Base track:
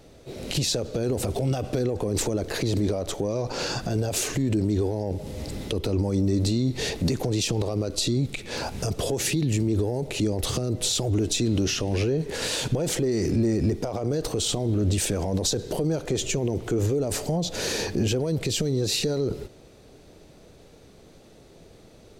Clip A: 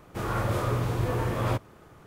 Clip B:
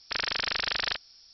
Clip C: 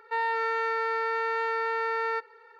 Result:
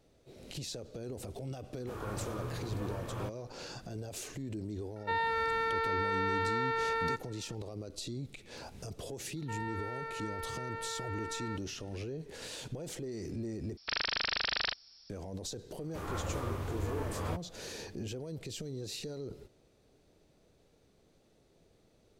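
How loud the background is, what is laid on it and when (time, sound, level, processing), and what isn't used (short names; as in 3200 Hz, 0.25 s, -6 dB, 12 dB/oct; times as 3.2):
base track -16 dB
1.72 add A -12.5 dB + notch 2000 Hz, Q 13
4.96 add C -4 dB + bell 3700 Hz +7.5 dB 0.34 oct
9.37 add C -13 dB
13.77 replace with B -3.5 dB
15.79 add A -9.5 dB + frequency shift -26 Hz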